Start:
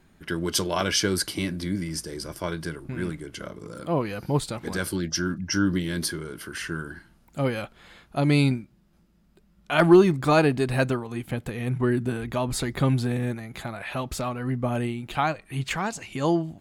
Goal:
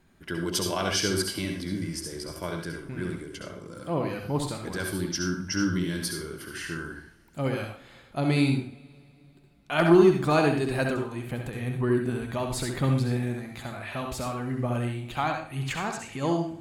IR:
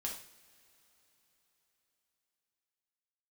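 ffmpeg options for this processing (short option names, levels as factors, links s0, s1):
-filter_complex "[0:a]asplit=2[s0][s1];[1:a]atrim=start_sample=2205,asetrate=61740,aresample=44100,adelay=66[s2];[s1][s2]afir=irnorm=-1:irlink=0,volume=1[s3];[s0][s3]amix=inputs=2:normalize=0,volume=0.631"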